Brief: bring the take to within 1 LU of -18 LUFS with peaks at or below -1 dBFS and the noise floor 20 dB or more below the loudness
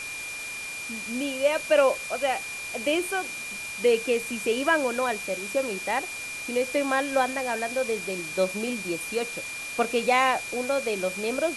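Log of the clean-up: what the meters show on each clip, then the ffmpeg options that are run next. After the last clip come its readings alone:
steady tone 2400 Hz; tone level -34 dBFS; noise floor -36 dBFS; noise floor target -47 dBFS; loudness -26.5 LUFS; peak -9.5 dBFS; loudness target -18.0 LUFS
-> -af "bandreject=f=2.4k:w=30"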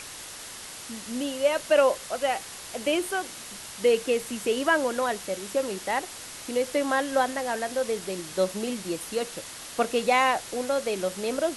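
steady tone none; noise floor -41 dBFS; noise floor target -47 dBFS
-> -af "afftdn=nr=6:nf=-41"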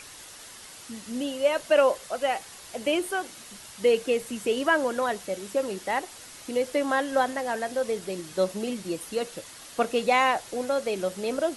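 noise floor -46 dBFS; noise floor target -47 dBFS
-> -af "afftdn=nr=6:nf=-46"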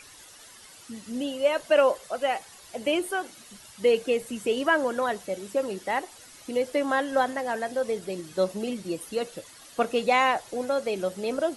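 noise floor -50 dBFS; loudness -27.0 LUFS; peak -10.5 dBFS; loudness target -18.0 LUFS
-> -af "volume=9dB"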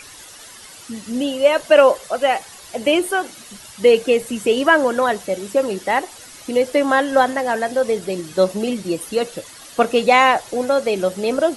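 loudness -18.0 LUFS; peak -1.5 dBFS; noise floor -41 dBFS

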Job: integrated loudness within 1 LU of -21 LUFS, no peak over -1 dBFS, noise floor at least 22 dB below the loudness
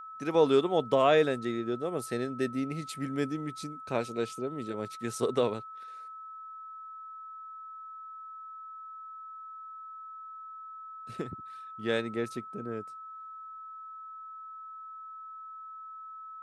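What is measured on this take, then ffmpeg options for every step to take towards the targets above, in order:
steady tone 1300 Hz; tone level -42 dBFS; loudness -31.0 LUFS; peak -11.5 dBFS; loudness target -21.0 LUFS
-> -af "bandreject=f=1.3k:w=30"
-af "volume=10dB"

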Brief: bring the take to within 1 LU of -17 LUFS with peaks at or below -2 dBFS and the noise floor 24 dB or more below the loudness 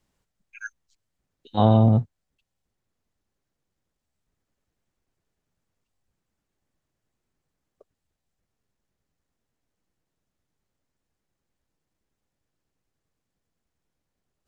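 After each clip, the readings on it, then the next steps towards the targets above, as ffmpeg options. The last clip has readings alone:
loudness -20.0 LUFS; peak -5.5 dBFS; loudness target -17.0 LUFS
-> -af "volume=3dB"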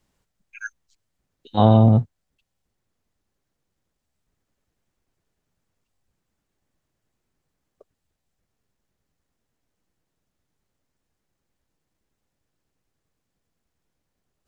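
loudness -17.0 LUFS; peak -2.5 dBFS; noise floor -79 dBFS

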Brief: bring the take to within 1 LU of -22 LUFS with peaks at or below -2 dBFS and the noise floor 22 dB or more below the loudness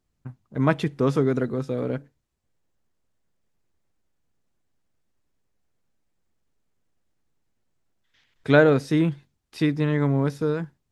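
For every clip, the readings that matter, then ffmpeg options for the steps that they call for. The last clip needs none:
loudness -23.0 LUFS; peak -4.5 dBFS; loudness target -22.0 LUFS
-> -af "volume=1dB"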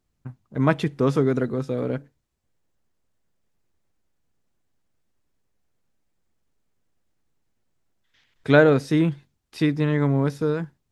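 loudness -22.0 LUFS; peak -3.5 dBFS; noise floor -75 dBFS

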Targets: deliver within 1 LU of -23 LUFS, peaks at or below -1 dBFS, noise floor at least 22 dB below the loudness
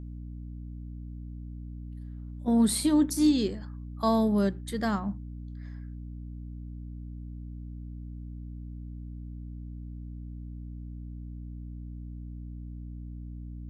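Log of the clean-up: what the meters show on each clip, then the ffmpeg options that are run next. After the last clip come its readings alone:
hum 60 Hz; harmonics up to 300 Hz; hum level -37 dBFS; loudness -32.5 LUFS; peak -13.5 dBFS; loudness target -23.0 LUFS
-> -af "bandreject=f=60:t=h:w=6,bandreject=f=120:t=h:w=6,bandreject=f=180:t=h:w=6,bandreject=f=240:t=h:w=6,bandreject=f=300:t=h:w=6"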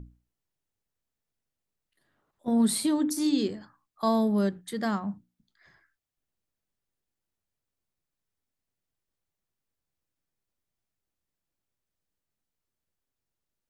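hum none; loudness -27.5 LUFS; peak -13.5 dBFS; loudness target -23.0 LUFS
-> -af "volume=4.5dB"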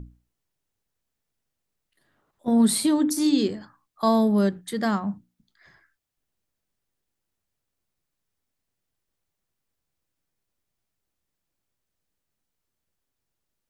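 loudness -23.0 LUFS; peak -9.0 dBFS; noise floor -82 dBFS

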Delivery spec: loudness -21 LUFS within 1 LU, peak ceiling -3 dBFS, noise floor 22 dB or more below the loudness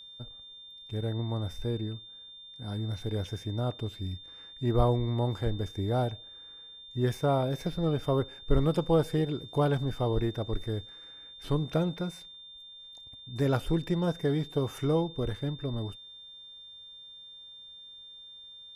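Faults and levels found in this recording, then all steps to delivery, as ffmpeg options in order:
steady tone 3600 Hz; tone level -46 dBFS; loudness -31.0 LUFS; peak -11.5 dBFS; loudness target -21.0 LUFS
-> -af "bandreject=f=3.6k:w=30"
-af "volume=10dB,alimiter=limit=-3dB:level=0:latency=1"

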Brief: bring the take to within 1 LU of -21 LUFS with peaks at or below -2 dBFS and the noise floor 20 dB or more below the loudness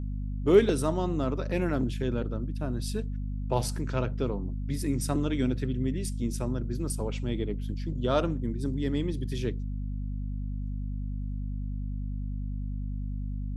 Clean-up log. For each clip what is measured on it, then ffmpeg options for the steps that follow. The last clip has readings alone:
hum 50 Hz; harmonics up to 250 Hz; hum level -30 dBFS; loudness -31.0 LUFS; peak -8.5 dBFS; loudness target -21.0 LUFS
-> -af "bandreject=f=50:t=h:w=6,bandreject=f=100:t=h:w=6,bandreject=f=150:t=h:w=6,bandreject=f=200:t=h:w=6,bandreject=f=250:t=h:w=6"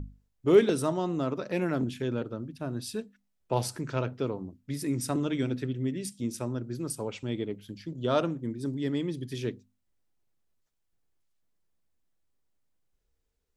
hum none; loudness -31.0 LUFS; peak -9.5 dBFS; loudness target -21.0 LUFS
-> -af "volume=10dB,alimiter=limit=-2dB:level=0:latency=1"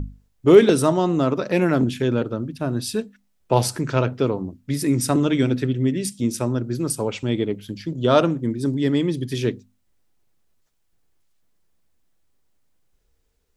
loudness -21.5 LUFS; peak -2.0 dBFS; noise floor -67 dBFS

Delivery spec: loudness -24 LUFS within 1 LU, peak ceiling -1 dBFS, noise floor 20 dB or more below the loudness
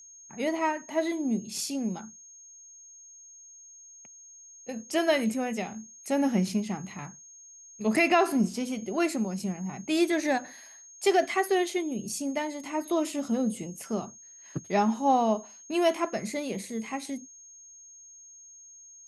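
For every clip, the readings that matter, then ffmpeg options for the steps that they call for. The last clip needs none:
steady tone 6500 Hz; tone level -48 dBFS; loudness -28.5 LUFS; peak -10.0 dBFS; loudness target -24.0 LUFS
-> -af "bandreject=f=6.5k:w=30"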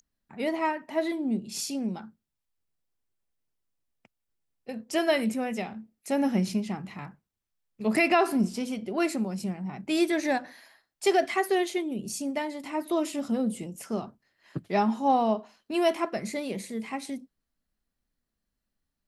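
steady tone none; loudness -28.5 LUFS; peak -10.0 dBFS; loudness target -24.0 LUFS
-> -af "volume=4.5dB"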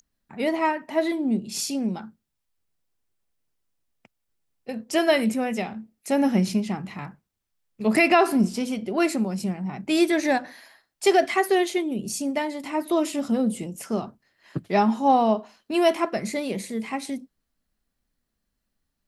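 loudness -24.0 LUFS; peak -5.5 dBFS; noise floor -79 dBFS

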